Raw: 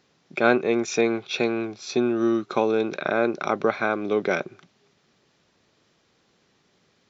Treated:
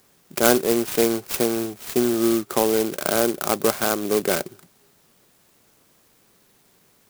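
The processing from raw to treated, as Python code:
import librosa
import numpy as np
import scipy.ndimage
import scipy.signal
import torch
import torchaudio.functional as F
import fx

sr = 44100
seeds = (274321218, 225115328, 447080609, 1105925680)

p1 = fx.quant_dither(x, sr, seeds[0], bits=8, dither='triangular')
p2 = x + F.gain(torch.from_numpy(p1), -11.5).numpy()
y = fx.clock_jitter(p2, sr, seeds[1], jitter_ms=0.11)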